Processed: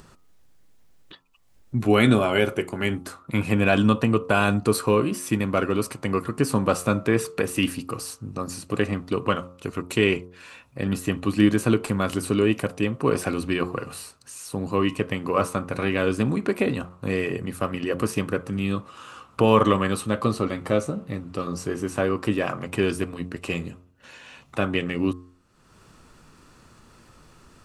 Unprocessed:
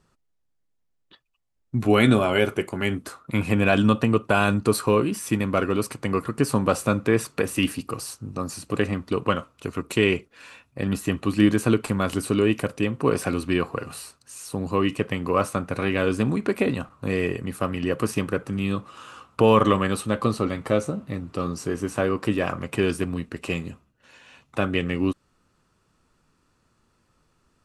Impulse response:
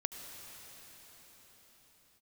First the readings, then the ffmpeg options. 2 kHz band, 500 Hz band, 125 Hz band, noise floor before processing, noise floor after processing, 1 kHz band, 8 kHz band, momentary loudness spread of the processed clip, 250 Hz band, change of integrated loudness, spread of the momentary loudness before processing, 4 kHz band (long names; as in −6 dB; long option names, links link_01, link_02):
0.0 dB, −0.5 dB, −0.5 dB, −71 dBFS, −56 dBFS, −0.5 dB, 0.0 dB, 13 LU, 0.0 dB, −0.5 dB, 12 LU, 0.0 dB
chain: -af "acompressor=mode=upward:threshold=-38dB:ratio=2.5,bandreject=frequency=89.55:width_type=h:width=4,bandreject=frequency=179.1:width_type=h:width=4,bandreject=frequency=268.65:width_type=h:width=4,bandreject=frequency=358.2:width_type=h:width=4,bandreject=frequency=447.75:width_type=h:width=4,bandreject=frequency=537.3:width_type=h:width=4,bandreject=frequency=626.85:width_type=h:width=4,bandreject=frequency=716.4:width_type=h:width=4,bandreject=frequency=805.95:width_type=h:width=4,bandreject=frequency=895.5:width_type=h:width=4,bandreject=frequency=985.05:width_type=h:width=4,bandreject=frequency=1074.6:width_type=h:width=4,bandreject=frequency=1164.15:width_type=h:width=4,bandreject=frequency=1253.7:width_type=h:width=4,bandreject=frequency=1343.25:width_type=h:width=4"